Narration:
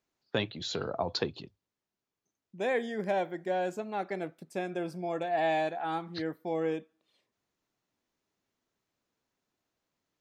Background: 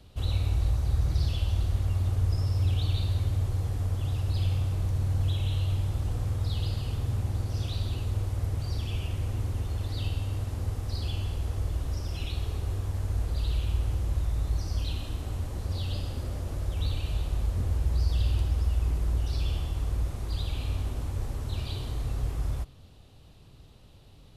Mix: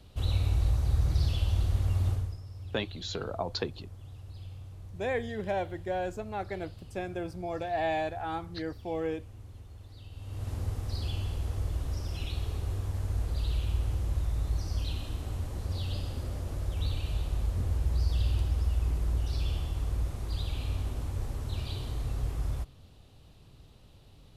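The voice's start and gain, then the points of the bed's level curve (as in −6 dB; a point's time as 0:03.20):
2.40 s, −1.5 dB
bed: 0:02.11 −0.5 dB
0:02.41 −17 dB
0:10.08 −17 dB
0:10.49 −2 dB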